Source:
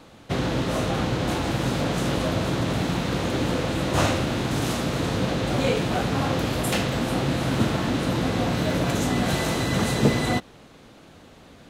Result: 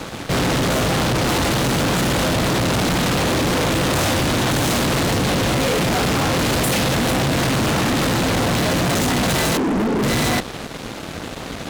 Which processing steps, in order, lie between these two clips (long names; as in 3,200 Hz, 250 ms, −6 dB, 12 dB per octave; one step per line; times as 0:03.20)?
0:09.57–0:10.03: Chebyshev band-pass filter 200–450 Hz, order 3
fuzz pedal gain 41 dB, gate −51 dBFS
level −4.5 dB